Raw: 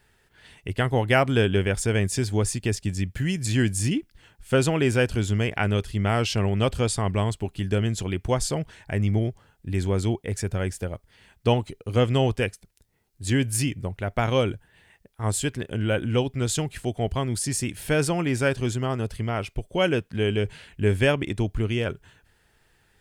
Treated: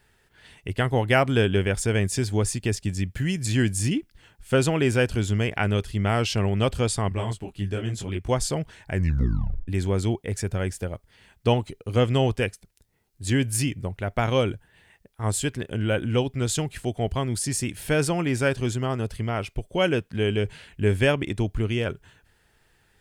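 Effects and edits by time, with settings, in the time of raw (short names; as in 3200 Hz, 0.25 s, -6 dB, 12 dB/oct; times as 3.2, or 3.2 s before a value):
7.09–8.29 detuned doubles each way 32 cents
8.92 tape stop 0.76 s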